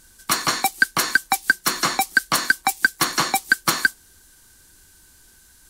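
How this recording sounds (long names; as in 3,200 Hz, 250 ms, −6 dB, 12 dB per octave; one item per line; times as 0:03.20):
background noise floor −53 dBFS
spectral slope −1.5 dB per octave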